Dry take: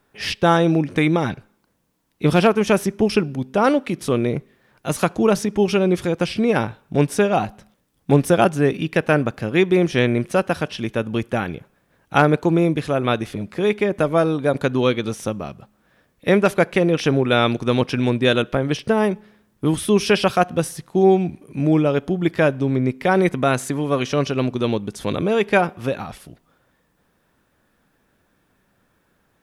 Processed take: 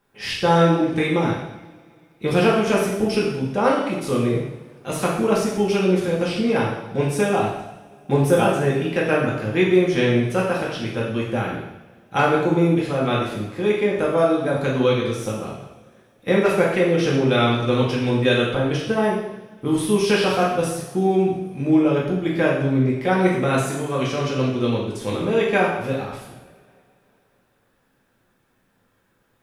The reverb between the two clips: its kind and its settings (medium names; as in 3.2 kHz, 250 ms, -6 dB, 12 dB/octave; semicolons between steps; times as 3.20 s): two-slope reverb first 0.86 s, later 3.2 s, from -24 dB, DRR -5 dB; trim -7 dB